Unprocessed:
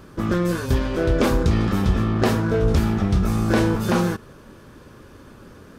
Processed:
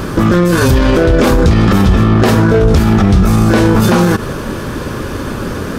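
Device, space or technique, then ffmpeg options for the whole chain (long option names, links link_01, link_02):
loud club master: -af "acompressor=threshold=-21dB:ratio=2,asoftclip=type=hard:threshold=-14dB,alimiter=level_in=25.5dB:limit=-1dB:release=50:level=0:latency=1,volume=-1dB"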